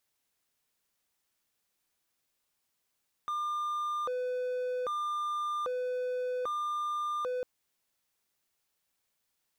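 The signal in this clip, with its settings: siren hi-lo 501–1200 Hz 0.63/s triangle -28.5 dBFS 4.15 s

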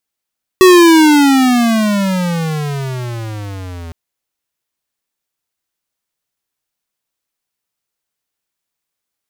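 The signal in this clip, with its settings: gliding synth tone square, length 3.31 s, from 377 Hz, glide -26.5 st, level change -24 dB, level -4 dB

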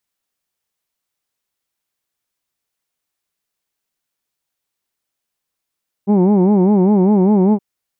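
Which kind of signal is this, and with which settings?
formant-synthesis vowel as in who'd, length 1.52 s, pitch 193 Hz, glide +0.5 st, vibrato 5 Hz, vibrato depth 1.45 st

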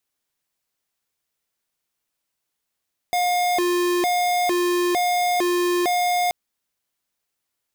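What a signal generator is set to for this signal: siren hi-lo 353–713 Hz 1.1/s square -20.5 dBFS 3.18 s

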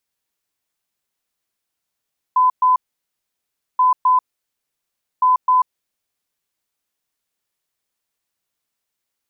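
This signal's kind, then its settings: beep pattern sine 1010 Hz, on 0.14 s, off 0.12 s, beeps 2, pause 1.03 s, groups 3, -10.5 dBFS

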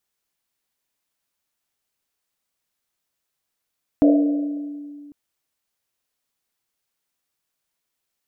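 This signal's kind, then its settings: Risset drum, pitch 290 Hz, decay 2.34 s, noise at 560 Hz, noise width 200 Hz, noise 15%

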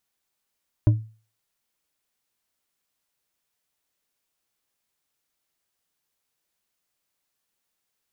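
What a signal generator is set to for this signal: glass hit bar, lowest mode 110 Hz, decay 0.37 s, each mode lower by 9.5 dB, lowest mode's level -10 dB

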